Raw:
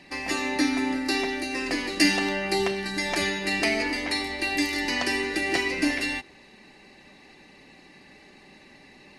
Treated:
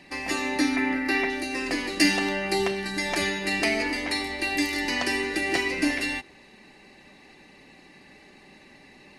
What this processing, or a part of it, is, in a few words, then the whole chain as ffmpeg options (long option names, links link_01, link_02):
exciter from parts: -filter_complex "[0:a]asettb=1/sr,asplit=3[link_01][link_02][link_03];[link_01]atrim=end=0.764[link_04];[link_02]atrim=start=0.76:end=1.3,asetpts=PTS-STARTPTS,afade=type=in:duration=0.004:curve=qsin,afade=type=out:start_time=0.536:duration=0.004:curve=qsin,equalizer=frequency=2000:width_type=o:width=1:gain=8,equalizer=frequency=4000:width_type=o:width=1:gain=-4,equalizer=frequency=8000:width_type=o:width=1:gain=-11[link_05];[link_03]atrim=start=1.296[link_06];[link_04][link_05]acrossfade=duration=0.004:curve1=hsin:curve2=qsin[link_07];[link_07][link_06]acrossfade=duration=0.004:curve1=qsin:curve2=hsin,asplit=2[link_08][link_09];[link_09]highpass=3800,asoftclip=type=tanh:threshold=-28dB,highpass=4500,volume=-11.5dB[link_10];[link_08][link_10]amix=inputs=2:normalize=0"